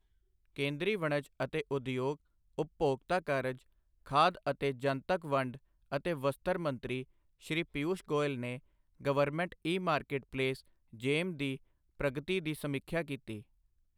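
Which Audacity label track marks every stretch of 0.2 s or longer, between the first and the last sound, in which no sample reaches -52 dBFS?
2.160000	2.580000	silence
3.610000	4.060000	silence
5.570000	5.910000	silence
7.040000	7.420000	silence
8.590000	9.000000	silence
10.600000	10.930000	silence
11.570000	12.000000	silence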